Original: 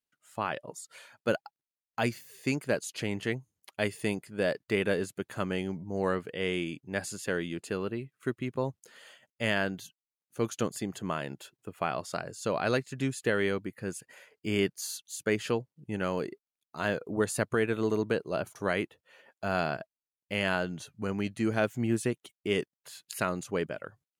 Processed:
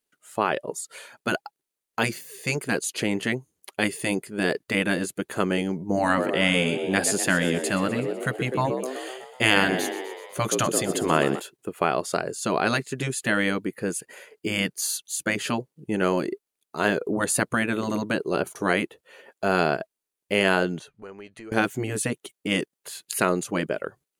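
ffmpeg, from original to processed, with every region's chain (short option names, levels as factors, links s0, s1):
-filter_complex "[0:a]asettb=1/sr,asplit=3[s0][s1][s2];[s0]atrim=end=5.894[s3];[s1]atrim=start=5.89:end=11.4,asetpts=PTS-STARTPTS,afade=t=in:d=0.004:c=qsin,afade=t=out:st=5.506:d=0.004:c=qsin,acontrast=26,asplit=8[s4][s5][s6][s7][s8][s9][s10][s11];[s5]adelay=125,afreqshift=63,volume=0.2[s12];[s6]adelay=250,afreqshift=126,volume=0.123[s13];[s7]adelay=375,afreqshift=189,volume=0.0767[s14];[s8]adelay=500,afreqshift=252,volume=0.0473[s15];[s9]adelay=625,afreqshift=315,volume=0.0295[s16];[s10]adelay=750,afreqshift=378,volume=0.0182[s17];[s11]adelay=875,afreqshift=441,volume=0.0114[s18];[s4][s12][s13][s14][s15][s16][s17][s18]amix=inputs=8:normalize=0,atrim=end_sample=242991[s19];[s2]atrim=start=11.396[s20];[s3][s19]acrossfade=d=0.004:c1=hsin:c2=qsin[s21];[s21][s20]acrossfade=d=0.004:c1=qsin:c2=hsin,asettb=1/sr,asplit=3[s22][s23][s24];[s22]atrim=end=20.794[s25];[s23]atrim=start=20.79:end=21.52,asetpts=PTS-STARTPTS,afade=t=in:d=0.004:c=qsin,afade=t=out:st=0.726:d=0.004:c=qsin,lowpass=f=1800:p=1,acompressor=threshold=0.0112:ratio=4:attack=3.2:release=140:knee=1:detection=peak,equalizer=f=210:w=0.49:g=-14[s26];[s24]atrim=start=21.516[s27];[s25][s26]acrossfade=d=0.004:c1=hsin:c2=qsin[s28];[s28][s27]acrossfade=d=0.004:c1=qsin:c2=hsin,equalizer=f=100:t=o:w=0.67:g=-9,equalizer=f=400:t=o:w=0.67:g=8,equalizer=f=10000:t=o:w=0.67:g=5,afftfilt=real='re*lt(hypot(re,im),0.282)':imag='im*lt(hypot(re,im),0.282)':win_size=1024:overlap=0.75,bandreject=f=5300:w=28,volume=2.37"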